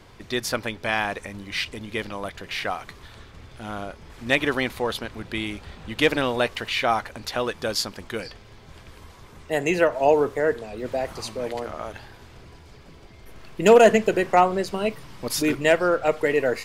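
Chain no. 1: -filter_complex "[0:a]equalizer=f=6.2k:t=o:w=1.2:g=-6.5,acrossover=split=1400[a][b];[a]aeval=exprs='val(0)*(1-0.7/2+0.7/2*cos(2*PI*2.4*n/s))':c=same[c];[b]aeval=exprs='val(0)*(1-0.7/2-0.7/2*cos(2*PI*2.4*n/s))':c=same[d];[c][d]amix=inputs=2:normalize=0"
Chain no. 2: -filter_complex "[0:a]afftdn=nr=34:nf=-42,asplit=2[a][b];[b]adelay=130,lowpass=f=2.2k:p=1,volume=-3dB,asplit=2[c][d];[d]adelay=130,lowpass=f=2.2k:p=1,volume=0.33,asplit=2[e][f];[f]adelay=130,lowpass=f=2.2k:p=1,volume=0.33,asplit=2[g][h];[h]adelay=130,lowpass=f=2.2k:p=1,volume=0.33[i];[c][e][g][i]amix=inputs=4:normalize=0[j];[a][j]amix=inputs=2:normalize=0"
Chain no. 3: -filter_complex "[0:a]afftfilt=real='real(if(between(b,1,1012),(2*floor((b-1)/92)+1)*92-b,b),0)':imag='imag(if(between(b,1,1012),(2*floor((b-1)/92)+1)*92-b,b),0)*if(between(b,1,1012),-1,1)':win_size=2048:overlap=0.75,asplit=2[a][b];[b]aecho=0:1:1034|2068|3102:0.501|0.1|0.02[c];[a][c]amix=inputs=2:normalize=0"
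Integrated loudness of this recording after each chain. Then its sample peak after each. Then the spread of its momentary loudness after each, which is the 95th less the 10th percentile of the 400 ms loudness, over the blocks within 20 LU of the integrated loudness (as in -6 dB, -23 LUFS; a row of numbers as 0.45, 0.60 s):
-26.5, -22.0, -22.0 LUFS; -6.0, -1.5, -3.0 dBFS; 15, 15, 16 LU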